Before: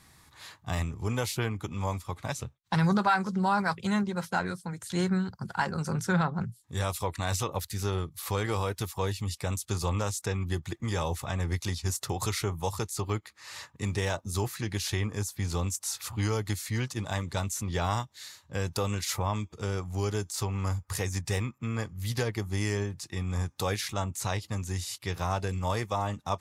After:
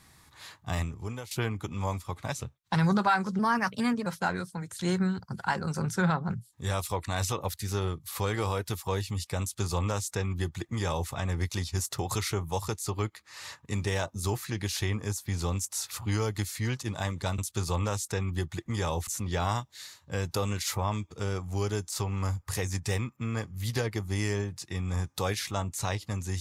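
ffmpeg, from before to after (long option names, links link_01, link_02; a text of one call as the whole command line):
ffmpeg -i in.wav -filter_complex "[0:a]asplit=6[link_01][link_02][link_03][link_04][link_05][link_06];[link_01]atrim=end=1.31,asetpts=PTS-STARTPTS,afade=type=out:start_time=0.8:duration=0.51:silence=0.141254[link_07];[link_02]atrim=start=1.31:end=3.394,asetpts=PTS-STARTPTS,afade=type=in:duration=0.004:curve=hsin:silence=0.141254[link_08];[link_03]atrim=start=3.39:end=4.17,asetpts=PTS-STARTPTS,asetrate=51156,aresample=44100,atrim=end_sample=29653,asetpts=PTS-STARTPTS[link_09];[link_04]atrim=start=4.166:end=17.492[link_10];[link_05]atrim=start=9.518:end=11.212[link_11];[link_06]atrim=start=17.488[link_12];[link_07][link_08]concat=n=2:v=0:a=1[link_13];[link_13][link_09]acrossfade=duration=0.004:curve1=hsin:curve2=hsin[link_14];[link_14][link_10]acrossfade=duration=0.004:curve1=hsin:curve2=hsin[link_15];[link_15][link_11]acrossfade=duration=0.004:curve1=hsin:curve2=hsin[link_16];[link_16][link_12]acrossfade=duration=0.004:curve1=hsin:curve2=hsin" out.wav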